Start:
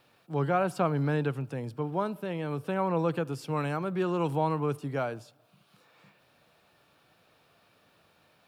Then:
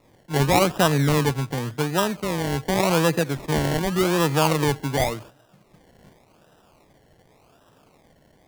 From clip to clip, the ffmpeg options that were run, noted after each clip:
-af "acrusher=samples=28:mix=1:aa=0.000001:lfo=1:lforange=16.8:lforate=0.88,volume=2.51"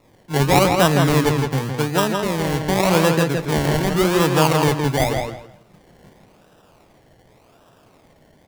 -filter_complex "[0:a]asplit=2[s0][s1];[s1]adelay=164,lowpass=f=4500:p=1,volume=0.631,asplit=2[s2][s3];[s3]adelay=164,lowpass=f=4500:p=1,volume=0.22,asplit=2[s4][s5];[s5]adelay=164,lowpass=f=4500:p=1,volume=0.22[s6];[s0][s2][s4][s6]amix=inputs=4:normalize=0,volume=1.33"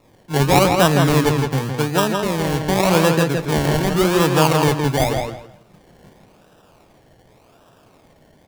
-af "bandreject=f=2000:w=21,volume=1.12"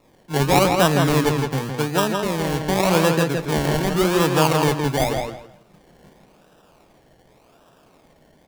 -af "equalizer=f=100:t=o:w=0.47:g=-8.5,volume=0.794"

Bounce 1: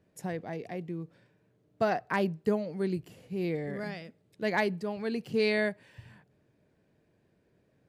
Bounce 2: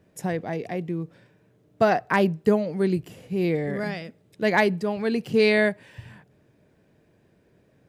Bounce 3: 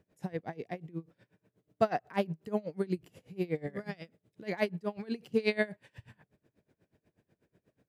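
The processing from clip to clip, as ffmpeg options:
-af "bandreject=f=4400:w=19,volume=2.51"
-af "aeval=exprs='val(0)*pow(10,-24*(0.5-0.5*cos(2*PI*8.2*n/s))/20)':c=same,volume=0.562"

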